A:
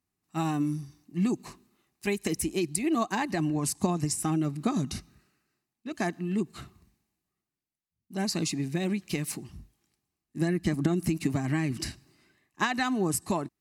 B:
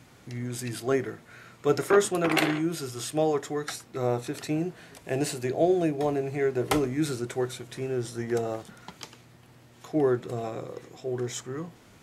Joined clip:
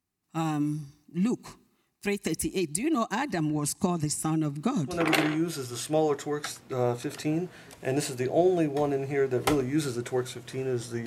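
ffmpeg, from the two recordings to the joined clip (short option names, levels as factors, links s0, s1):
-filter_complex "[0:a]apad=whole_dur=11.06,atrim=end=11.06,atrim=end=5.04,asetpts=PTS-STARTPTS[s0];[1:a]atrim=start=2.08:end=8.3,asetpts=PTS-STARTPTS[s1];[s0][s1]acrossfade=d=0.2:c1=tri:c2=tri"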